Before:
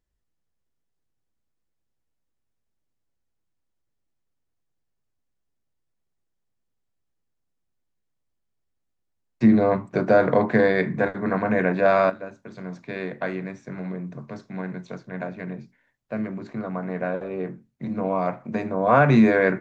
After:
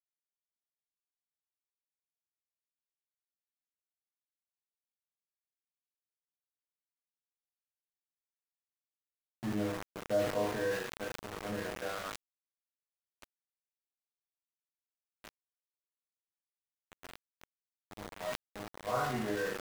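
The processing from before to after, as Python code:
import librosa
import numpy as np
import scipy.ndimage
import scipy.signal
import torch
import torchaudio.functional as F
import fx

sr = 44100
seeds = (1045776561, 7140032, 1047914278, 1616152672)

y = fx.freq_compress(x, sr, knee_hz=1500.0, ratio=1.5)
y = fx.resonator_bank(y, sr, root=44, chord='minor', decay_s=0.66)
y = np.where(np.abs(y) >= 10.0 ** (-38.5 / 20.0), y, 0.0)
y = fx.sustainer(y, sr, db_per_s=69.0)
y = y * 10.0 ** (1.0 / 20.0)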